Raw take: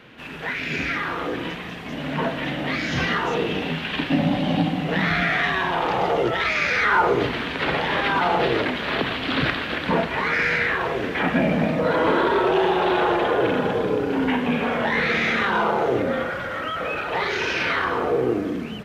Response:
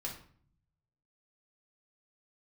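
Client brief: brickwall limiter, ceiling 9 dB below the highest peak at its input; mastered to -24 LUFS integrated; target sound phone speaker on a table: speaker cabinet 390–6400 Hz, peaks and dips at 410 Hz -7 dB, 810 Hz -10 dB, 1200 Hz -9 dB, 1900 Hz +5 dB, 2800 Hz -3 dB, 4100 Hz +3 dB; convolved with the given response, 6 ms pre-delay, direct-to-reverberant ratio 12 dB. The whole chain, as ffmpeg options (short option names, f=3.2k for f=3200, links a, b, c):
-filter_complex "[0:a]alimiter=limit=-17dB:level=0:latency=1,asplit=2[a][b];[1:a]atrim=start_sample=2205,adelay=6[c];[b][c]afir=irnorm=-1:irlink=0,volume=-12dB[d];[a][d]amix=inputs=2:normalize=0,highpass=f=390:w=0.5412,highpass=f=390:w=1.3066,equalizer=f=410:t=q:w=4:g=-7,equalizer=f=810:t=q:w=4:g=-10,equalizer=f=1.2k:t=q:w=4:g=-9,equalizer=f=1.9k:t=q:w=4:g=5,equalizer=f=2.8k:t=q:w=4:g=-3,equalizer=f=4.1k:t=q:w=4:g=3,lowpass=f=6.4k:w=0.5412,lowpass=f=6.4k:w=1.3066,volume=3.5dB"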